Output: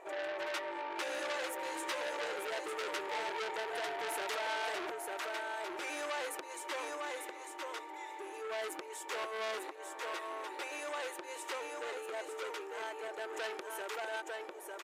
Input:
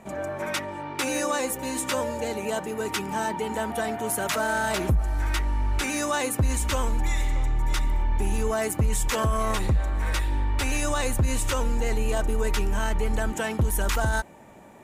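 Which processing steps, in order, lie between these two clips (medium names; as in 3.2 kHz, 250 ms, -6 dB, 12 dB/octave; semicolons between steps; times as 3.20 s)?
treble shelf 4.5 kHz -11.5 dB; compression, threshold -29 dBFS, peak gain reduction 10 dB; brick-wall FIR high-pass 310 Hz; on a send: delay 899 ms -4.5 dB; on the sum: transformer saturation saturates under 4 kHz; trim -1.5 dB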